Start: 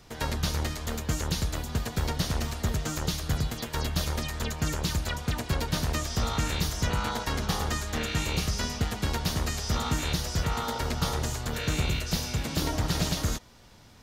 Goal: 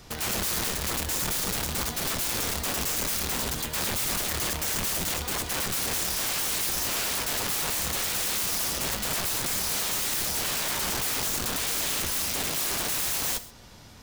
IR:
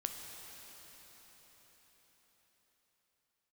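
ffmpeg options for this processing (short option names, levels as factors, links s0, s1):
-filter_complex "[0:a]aeval=exprs='(mod(31.6*val(0)+1,2)-1)/31.6':c=same,asplit=2[s0][s1];[1:a]atrim=start_sample=2205,atrim=end_sample=6174,highshelf=f=4700:g=7.5[s2];[s1][s2]afir=irnorm=-1:irlink=0,volume=0.75[s3];[s0][s3]amix=inputs=2:normalize=0"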